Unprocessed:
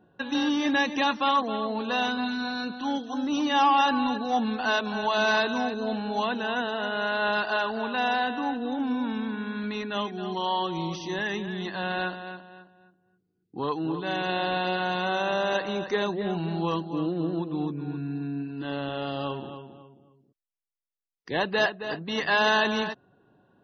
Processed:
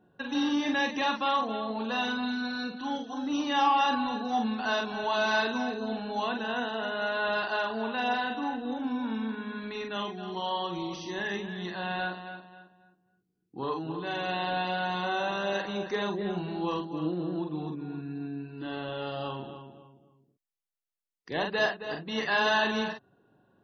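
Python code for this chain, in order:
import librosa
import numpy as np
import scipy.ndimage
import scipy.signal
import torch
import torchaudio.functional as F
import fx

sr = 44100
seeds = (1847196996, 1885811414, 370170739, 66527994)

y = fx.doubler(x, sr, ms=45.0, db=-4.5)
y = y * 10.0 ** (-4.5 / 20.0)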